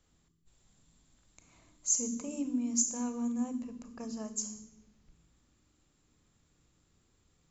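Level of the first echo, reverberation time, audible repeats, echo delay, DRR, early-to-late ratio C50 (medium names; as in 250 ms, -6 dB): no echo, 1.1 s, no echo, no echo, 10.0 dB, 11.5 dB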